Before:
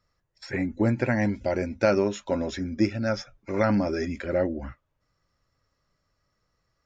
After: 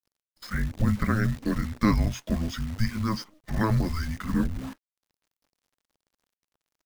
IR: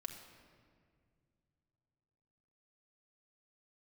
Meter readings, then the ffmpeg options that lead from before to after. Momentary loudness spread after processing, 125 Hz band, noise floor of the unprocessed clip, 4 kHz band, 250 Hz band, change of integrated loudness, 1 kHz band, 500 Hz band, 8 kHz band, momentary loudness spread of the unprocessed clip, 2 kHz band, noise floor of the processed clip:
10 LU, +4.5 dB, -76 dBFS, +1.0 dB, -1.0 dB, -1.5 dB, -1.0 dB, -12.0 dB, no reading, 10 LU, -2.5 dB, under -85 dBFS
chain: -af "afreqshift=-330,acrusher=bits=8:dc=4:mix=0:aa=0.000001"

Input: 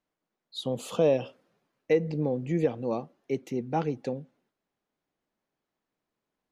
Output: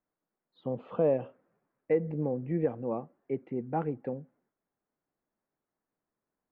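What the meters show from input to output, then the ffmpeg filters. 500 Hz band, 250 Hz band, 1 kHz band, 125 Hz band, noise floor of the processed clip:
-3.0 dB, -3.0 dB, -3.0 dB, -3.0 dB, under -85 dBFS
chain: -af "lowpass=f=1900:w=0.5412,lowpass=f=1900:w=1.3066,volume=0.708"

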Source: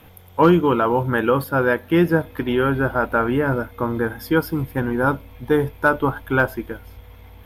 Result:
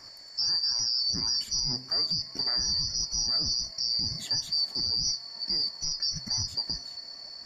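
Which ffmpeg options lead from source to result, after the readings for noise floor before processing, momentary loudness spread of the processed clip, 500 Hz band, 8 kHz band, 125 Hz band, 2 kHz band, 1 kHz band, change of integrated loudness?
-45 dBFS, 6 LU, -32.5 dB, no reading, -19.0 dB, -28.0 dB, -27.0 dB, -6.5 dB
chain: -af "afftfilt=real='real(if(lt(b,272),68*(eq(floor(b/68),0)*1+eq(floor(b/68),1)*2+eq(floor(b/68),2)*3+eq(floor(b/68),3)*0)+mod(b,68),b),0)':imag='imag(if(lt(b,272),68*(eq(floor(b/68),0)*1+eq(floor(b/68),1)*2+eq(floor(b/68),2)*3+eq(floor(b/68),3)*0)+mod(b,68),b),0)':win_size=2048:overlap=0.75,lowpass=f=7200:t=q:w=13,highshelf=f=4800:g=-9.5,acompressor=threshold=0.1:ratio=6,alimiter=limit=0.1:level=0:latency=1:release=21,bandreject=f=129.2:t=h:w=4,bandreject=f=258.4:t=h:w=4,bandreject=f=387.6:t=h:w=4,bandreject=f=516.8:t=h:w=4,bandreject=f=646:t=h:w=4,bandreject=f=775.2:t=h:w=4,bandreject=f=904.4:t=h:w=4,bandreject=f=1033.6:t=h:w=4,bandreject=f=1162.8:t=h:w=4,bandreject=f=1292:t=h:w=4,bandreject=f=1421.2:t=h:w=4,bandreject=f=1550.4:t=h:w=4,bandreject=f=1679.6:t=h:w=4,bandreject=f=1808.8:t=h:w=4,bandreject=f=1938:t=h:w=4,bandreject=f=2067.2:t=h:w=4,bandreject=f=2196.4:t=h:w=4,bandreject=f=2325.6:t=h:w=4,bandreject=f=2454.8:t=h:w=4,bandreject=f=2584:t=h:w=4,bandreject=f=2713.2:t=h:w=4,bandreject=f=2842.4:t=h:w=4,bandreject=f=2971.6:t=h:w=4"

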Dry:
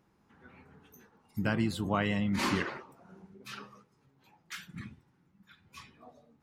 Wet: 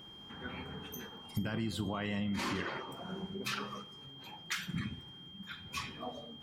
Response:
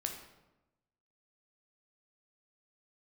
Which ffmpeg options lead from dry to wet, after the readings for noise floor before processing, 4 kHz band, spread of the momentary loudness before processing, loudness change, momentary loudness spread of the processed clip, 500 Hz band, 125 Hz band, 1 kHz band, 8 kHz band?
-70 dBFS, +2.5 dB, 20 LU, -6.5 dB, 13 LU, -4.0 dB, -3.0 dB, -3.0 dB, +0.5 dB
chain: -filter_complex "[0:a]equalizer=f=11000:t=o:w=0.77:g=-2,alimiter=limit=0.0708:level=0:latency=1:release=17,acompressor=threshold=0.00501:ratio=6,aeval=exprs='val(0)+0.000708*sin(2*PI*3200*n/s)':c=same,asplit=2[s0][s1];[1:a]atrim=start_sample=2205,adelay=44[s2];[s1][s2]afir=irnorm=-1:irlink=0,volume=0.141[s3];[s0][s3]amix=inputs=2:normalize=0,volume=3.98"

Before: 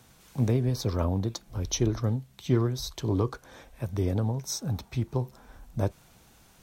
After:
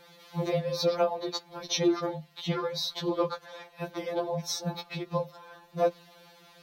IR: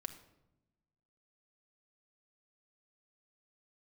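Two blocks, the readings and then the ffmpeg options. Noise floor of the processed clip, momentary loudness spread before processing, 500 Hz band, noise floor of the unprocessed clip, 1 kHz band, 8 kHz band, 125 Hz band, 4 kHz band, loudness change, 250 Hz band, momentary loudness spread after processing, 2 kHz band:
-57 dBFS, 9 LU, +4.0 dB, -58 dBFS, +6.0 dB, -3.0 dB, -11.5 dB, +5.5 dB, -1.5 dB, -3.0 dB, 13 LU, +4.5 dB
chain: -af "afreqshift=22,equalizer=f=250:t=o:w=1:g=-4,equalizer=f=500:t=o:w=1:g=9,equalizer=f=1000:t=o:w=1:g=5,equalizer=f=2000:t=o:w=1:g=5,equalizer=f=4000:t=o:w=1:g=11,equalizer=f=8000:t=o:w=1:g=-8,afftfilt=real='re*2.83*eq(mod(b,8),0)':imag='im*2.83*eq(mod(b,8),0)':win_size=2048:overlap=0.75"

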